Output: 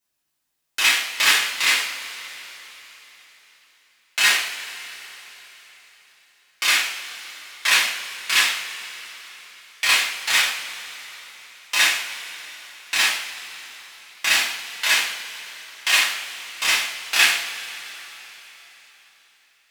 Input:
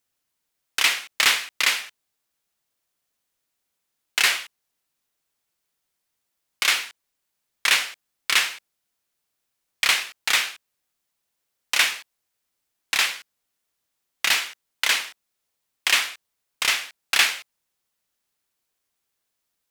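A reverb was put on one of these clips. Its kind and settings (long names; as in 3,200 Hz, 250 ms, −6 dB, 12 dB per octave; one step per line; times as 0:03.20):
coupled-rooms reverb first 0.46 s, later 4.2 s, from −18 dB, DRR −7.5 dB
level −5.5 dB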